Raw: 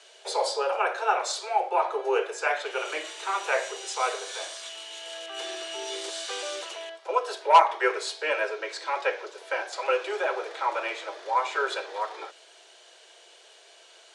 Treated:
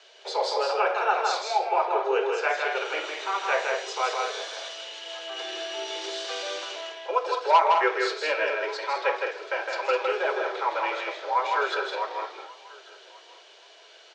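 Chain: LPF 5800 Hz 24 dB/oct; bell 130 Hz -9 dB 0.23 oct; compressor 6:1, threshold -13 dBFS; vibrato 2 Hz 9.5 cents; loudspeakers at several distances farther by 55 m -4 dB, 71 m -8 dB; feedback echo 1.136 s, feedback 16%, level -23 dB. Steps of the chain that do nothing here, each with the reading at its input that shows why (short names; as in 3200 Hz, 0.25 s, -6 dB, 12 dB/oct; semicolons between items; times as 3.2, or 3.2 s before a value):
bell 130 Hz: input band starts at 300 Hz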